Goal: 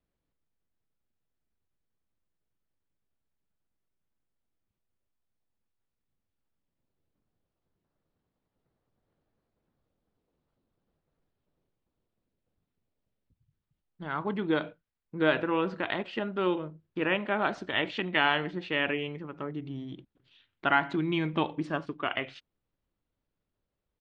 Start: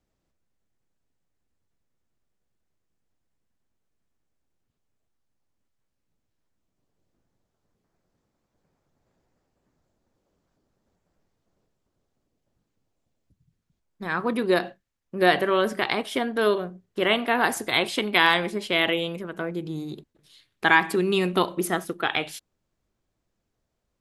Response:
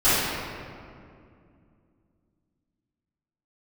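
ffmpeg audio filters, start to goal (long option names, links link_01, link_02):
-af "lowpass=frequency=4800:width=0.5412,lowpass=frequency=4800:width=1.3066,asetrate=38170,aresample=44100,atempo=1.15535,volume=-6dB"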